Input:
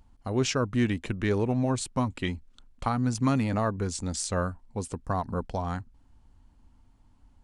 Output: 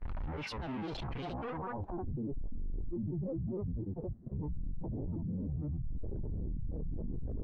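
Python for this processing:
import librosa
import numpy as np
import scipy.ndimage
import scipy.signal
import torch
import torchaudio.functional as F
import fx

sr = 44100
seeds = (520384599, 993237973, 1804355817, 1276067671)

y = np.sign(x) * np.sqrt(np.mean(np.square(x)))
y = fx.high_shelf(y, sr, hz=8400.0, db=10.0)
y = y + 10.0 ** (-16.0 / 20.0) * np.pad(y, (int(549 * sr / 1000.0), 0))[:len(y)]
y = fx.filter_sweep_lowpass(y, sr, from_hz=2500.0, to_hz=270.0, start_s=1.24, end_s=2.24, q=1.5)
y = fx.granulator(y, sr, seeds[0], grain_ms=100.0, per_s=20.0, spray_ms=100.0, spread_st=12)
y = fx.dynamic_eq(y, sr, hz=900.0, q=2.0, threshold_db=-52.0, ratio=4.0, max_db=5)
y = fx.level_steps(y, sr, step_db=13)
y = fx.dmg_buzz(y, sr, base_hz=100.0, harmonics=20, level_db=-68.0, tilt_db=-4, odd_only=False)
y = fx.spectral_expand(y, sr, expansion=1.5)
y = F.gain(torch.from_numpy(y), 3.0).numpy()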